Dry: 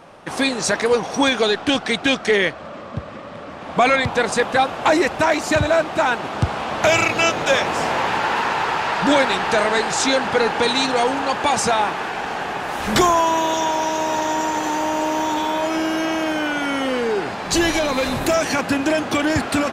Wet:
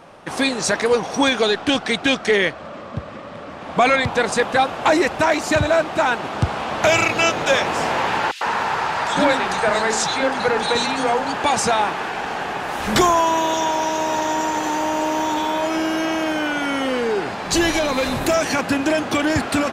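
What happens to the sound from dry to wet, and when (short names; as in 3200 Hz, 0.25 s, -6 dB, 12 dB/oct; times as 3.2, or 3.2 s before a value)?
8.31–11.34 three bands offset in time highs, mids, lows 0.1/0.15 s, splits 330/3000 Hz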